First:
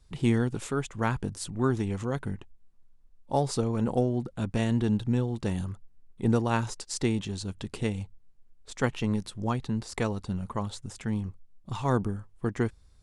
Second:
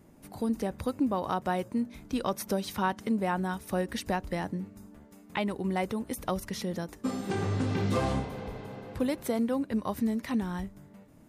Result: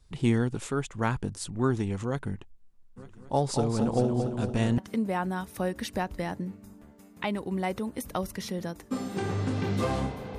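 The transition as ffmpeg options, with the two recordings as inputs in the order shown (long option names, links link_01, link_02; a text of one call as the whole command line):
ffmpeg -i cue0.wav -i cue1.wav -filter_complex "[0:a]asplit=3[link_01][link_02][link_03];[link_01]afade=type=out:start_time=2.96:duration=0.02[link_04];[link_02]aecho=1:1:226|452|678|904|1130|1356|1582|1808:0.473|0.274|0.159|0.0923|0.0535|0.0311|0.018|0.0104,afade=type=in:start_time=2.96:duration=0.02,afade=type=out:start_time=4.78:duration=0.02[link_05];[link_03]afade=type=in:start_time=4.78:duration=0.02[link_06];[link_04][link_05][link_06]amix=inputs=3:normalize=0,apad=whole_dur=10.38,atrim=end=10.38,atrim=end=4.782[link_07];[1:a]atrim=start=2.908:end=8.51[link_08];[link_07][link_08]acrossfade=duration=0.004:curve1=hsin:curve2=hsin" out.wav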